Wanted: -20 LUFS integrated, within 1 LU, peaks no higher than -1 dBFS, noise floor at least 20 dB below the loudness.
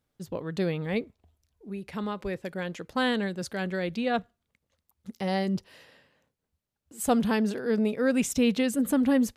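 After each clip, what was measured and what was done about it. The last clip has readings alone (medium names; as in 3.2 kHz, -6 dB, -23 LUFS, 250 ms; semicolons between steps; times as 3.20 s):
loudness -28.5 LUFS; peak level -12.0 dBFS; loudness target -20.0 LUFS
-> trim +8.5 dB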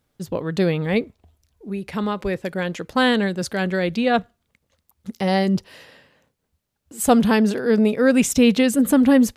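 loudness -20.0 LUFS; peak level -3.5 dBFS; noise floor -76 dBFS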